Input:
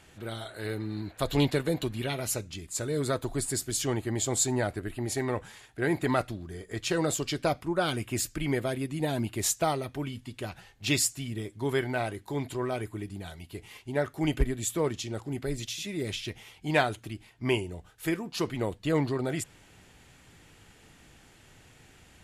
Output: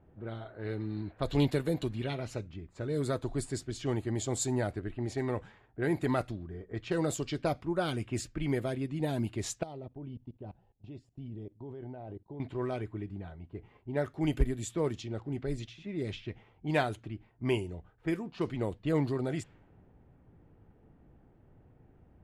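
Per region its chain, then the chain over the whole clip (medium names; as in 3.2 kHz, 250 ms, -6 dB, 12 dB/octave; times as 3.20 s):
9.63–12.40 s: level held to a coarse grid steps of 20 dB + high-order bell 1.6 kHz -9.5 dB 1.3 oct
whole clip: tilt shelf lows +3 dB, about 670 Hz; level-controlled noise filter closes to 740 Hz, open at -23 dBFS; trim -4 dB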